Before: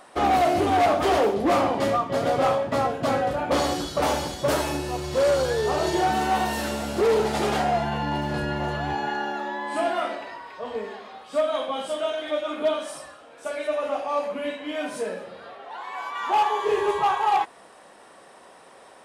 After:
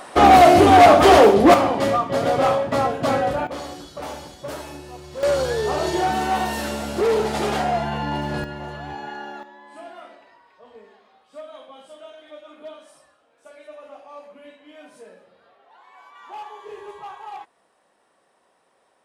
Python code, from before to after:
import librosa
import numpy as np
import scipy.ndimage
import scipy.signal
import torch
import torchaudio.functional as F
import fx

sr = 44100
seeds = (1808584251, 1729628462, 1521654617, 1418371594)

y = fx.gain(x, sr, db=fx.steps((0.0, 10.0), (1.54, 3.0), (3.47, -9.5), (5.23, 1.0), (8.44, -6.0), (9.43, -15.0)))